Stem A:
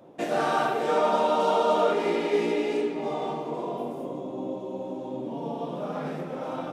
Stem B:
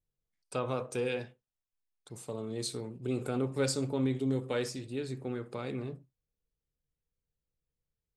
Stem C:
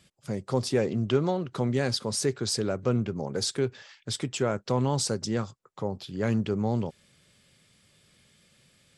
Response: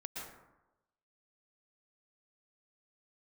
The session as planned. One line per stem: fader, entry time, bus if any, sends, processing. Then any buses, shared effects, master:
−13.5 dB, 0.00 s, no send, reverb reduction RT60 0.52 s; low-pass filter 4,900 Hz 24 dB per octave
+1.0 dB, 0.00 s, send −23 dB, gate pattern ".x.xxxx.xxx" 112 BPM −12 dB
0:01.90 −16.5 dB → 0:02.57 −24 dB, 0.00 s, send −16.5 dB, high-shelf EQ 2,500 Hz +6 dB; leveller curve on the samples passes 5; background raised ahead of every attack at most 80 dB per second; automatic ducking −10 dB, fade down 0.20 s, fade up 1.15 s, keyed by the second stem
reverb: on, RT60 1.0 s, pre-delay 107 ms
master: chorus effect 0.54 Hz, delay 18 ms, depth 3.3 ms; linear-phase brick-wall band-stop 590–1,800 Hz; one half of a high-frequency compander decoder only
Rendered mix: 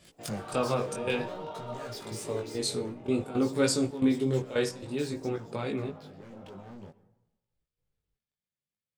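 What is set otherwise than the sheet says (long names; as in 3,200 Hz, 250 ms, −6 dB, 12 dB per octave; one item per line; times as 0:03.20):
stem B +1.0 dB → +8.0 dB
master: missing linear-phase brick-wall band-stop 590–1,800 Hz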